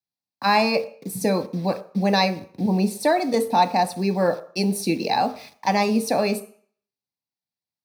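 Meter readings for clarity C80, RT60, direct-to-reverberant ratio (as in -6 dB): 18.5 dB, 0.50 s, 8.5 dB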